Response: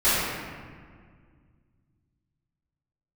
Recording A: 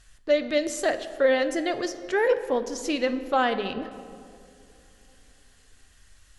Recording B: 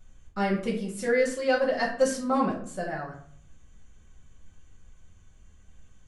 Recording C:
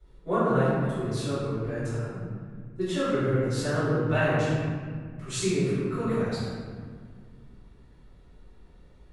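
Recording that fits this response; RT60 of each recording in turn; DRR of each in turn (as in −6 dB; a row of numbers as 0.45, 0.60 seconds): C; non-exponential decay, 0.55 s, 1.9 s; 9.0, −6.5, −17.0 decibels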